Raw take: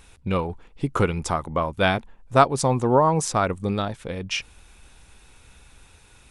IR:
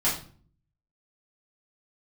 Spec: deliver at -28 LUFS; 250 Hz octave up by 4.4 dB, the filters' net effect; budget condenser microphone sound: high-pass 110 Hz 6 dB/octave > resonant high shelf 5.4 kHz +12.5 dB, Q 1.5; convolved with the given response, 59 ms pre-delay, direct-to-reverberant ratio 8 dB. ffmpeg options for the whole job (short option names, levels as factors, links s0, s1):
-filter_complex "[0:a]equalizer=f=250:t=o:g=7,asplit=2[s0][s1];[1:a]atrim=start_sample=2205,adelay=59[s2];[s1][s2]afir=irnorm=-1:irlink=0,volume=0.112[s3];[s0][s3]amix=inputs=2:normalize=0,highpass=f=110:p=1,highshelf=f=5400:t=q:w=1.5:g=12.5,volume=0.398"